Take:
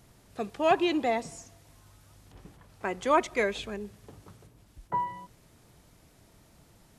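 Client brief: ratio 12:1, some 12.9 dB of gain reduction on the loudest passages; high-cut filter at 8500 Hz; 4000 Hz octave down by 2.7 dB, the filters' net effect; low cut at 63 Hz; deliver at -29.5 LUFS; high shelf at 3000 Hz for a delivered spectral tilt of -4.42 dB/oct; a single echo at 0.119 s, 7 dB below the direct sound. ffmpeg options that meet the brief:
-af "highpass=63,lowpass=8.5k,highshelf=f=3k:g=4.5,equalizer=f=4k:t=o:g=-7,acompressor=threshold=-30dB:ratio=12,aecho=1:1:119:0.447,volume=7.5dB"

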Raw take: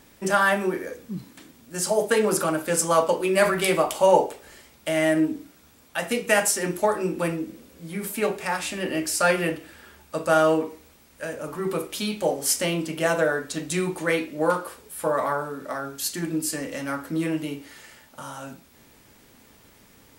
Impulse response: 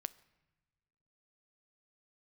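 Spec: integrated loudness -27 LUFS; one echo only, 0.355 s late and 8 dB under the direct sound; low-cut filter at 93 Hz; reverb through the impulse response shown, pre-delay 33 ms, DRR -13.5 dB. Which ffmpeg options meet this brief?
-filter_complex "[0:a]highpass=93,aecho=1:1:355:0.398,asplit=2[a][b];[1:a]atrim=start_sample=2205,adelay=33[c];[b][c]afir=irnorm=-1:irlink=0,volume=16dB[d];[a][d]amix=inputs=2:normalize=0,volume=-16.5dB"

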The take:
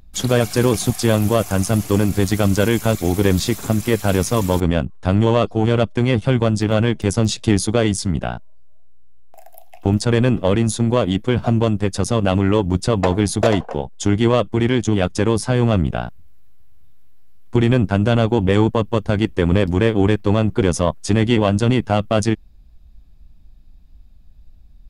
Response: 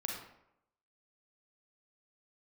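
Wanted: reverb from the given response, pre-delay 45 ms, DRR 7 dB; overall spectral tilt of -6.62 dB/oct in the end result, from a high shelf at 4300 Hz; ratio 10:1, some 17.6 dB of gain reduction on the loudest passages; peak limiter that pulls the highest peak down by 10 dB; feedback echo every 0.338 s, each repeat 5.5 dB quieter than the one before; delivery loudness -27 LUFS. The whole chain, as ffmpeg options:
-filter_complex "[0:a]highshelf=f=4.3k:g=-7.5,acompressor=threshold=-29dB:ratio=10,alimiter=limit=-23.5dB:level=0:latency=1,aecho=1:1:338|676|1014|1352|1690|2028|2366:0.531|0.281|0.149|0.079|0.0419|0.0222|0.0118,asplit=2[a][b];[1:a]atrim=start_sample=2205,adelay=45[c];[b][c]afir=irnorm=-1:irlink=0,volume=-8.5dB[d];[a][d]amix=inputs=2:normalize=0,volume=7dB"

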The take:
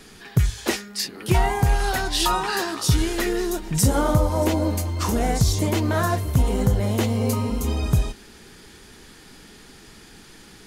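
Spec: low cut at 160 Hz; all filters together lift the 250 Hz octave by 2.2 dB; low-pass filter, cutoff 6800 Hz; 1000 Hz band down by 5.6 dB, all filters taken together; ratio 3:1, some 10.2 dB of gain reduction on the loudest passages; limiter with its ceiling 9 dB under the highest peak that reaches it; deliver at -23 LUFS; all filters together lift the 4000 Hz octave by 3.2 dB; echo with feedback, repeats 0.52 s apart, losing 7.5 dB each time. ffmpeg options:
-af "highpass=160,lowpass=6.8k,equalizer=f=250:t=o:g=4.5,equalizer=f=1k:t=o:g=-8,equalizer=f=4k:t=o:g=5,acompressor=threshold=-31dB:ratio=3,alimiter=level_in=1.5dB:limit=-24dB:level=0:latency=1,volume=-1.5dB,aecho=1:1:520|1040|1560|2080|2600:0.422|0.177|0.0744|0.0312|0.0131,volume=11.5dB"

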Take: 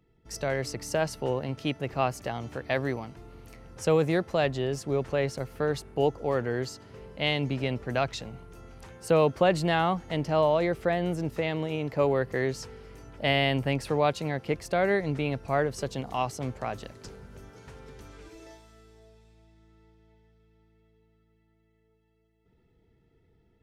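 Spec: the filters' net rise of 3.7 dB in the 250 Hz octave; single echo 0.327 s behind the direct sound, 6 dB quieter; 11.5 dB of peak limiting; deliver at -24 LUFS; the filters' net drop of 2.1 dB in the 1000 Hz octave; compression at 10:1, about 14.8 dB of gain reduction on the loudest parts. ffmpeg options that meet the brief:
-af "equalizer=f=250:t=o:g=5.5,equalizer=f=1k:t=o:g=-3.5,acompressor=threshold=-32dB:ratio=10,alimiter=level_in=7dB:limit=-24dB:level=0:latency=1,volume=-7dB,aecho=1:1:327:0.501,volume=17.5dB"

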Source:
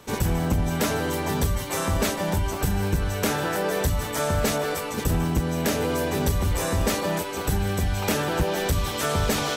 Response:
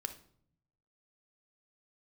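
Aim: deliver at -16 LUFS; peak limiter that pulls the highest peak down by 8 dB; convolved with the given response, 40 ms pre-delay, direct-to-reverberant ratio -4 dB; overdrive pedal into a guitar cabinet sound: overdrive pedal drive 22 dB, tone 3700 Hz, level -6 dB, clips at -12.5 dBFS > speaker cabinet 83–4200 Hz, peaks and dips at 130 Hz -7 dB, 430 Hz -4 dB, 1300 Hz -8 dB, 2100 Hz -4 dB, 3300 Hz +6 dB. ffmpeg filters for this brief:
-filter_complex "[0:a]alimiter=limit=-23.5dB:level=0:latency=1,asplit=2[a][b];[1:a]atrim=start_sample=2205,adelay=40[c];[b][c]afir=irnorm=-1:irlink=0,volume=5dB[d];[a][d]amix=inputs=2:normalize=0,asplit=2[e][f];[f]highpass=f=720:p=1,volume=22dB,asoftclip=type=tanh:threshold=-12.5dB[g];[e][g]amix=inputs=2:normalize=0,lowpass=f=3.7k:p=1,volume=-6dB,highpass=83,equalizer=f=130:t=q:w=4:g=-7,equalizer=f=430:t=q:w=4:g=-4,equalizer=f=1.3k:t=q:w=4:g=-8,equalizer=f=2.1k:t=q:w=4:g=-4,equalizer=f=3.3k:t=q:w=4:g=6,lowpass=f=4.2k:w=0.5412,lowpass=f=4.2k:w=1.3066,volume=6.5dB"

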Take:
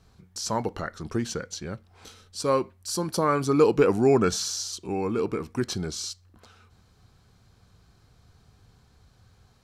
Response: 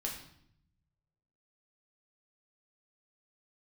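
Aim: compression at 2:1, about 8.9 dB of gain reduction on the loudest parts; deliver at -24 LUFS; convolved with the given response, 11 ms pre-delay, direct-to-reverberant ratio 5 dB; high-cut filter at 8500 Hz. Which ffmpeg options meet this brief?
-filter_complex "[0:a]lowpass=8.5k,acompressor=threshold=-31dB:ratio=2,asplit=2[a][b];[1:a]atrim=start_sample=2205,adelay=11[c];[b][c]afir=irnorm=-1:irlink=0,volume=-6dB[d];[a][d]amix=inputs=2:normalize=0,volume=7dB"

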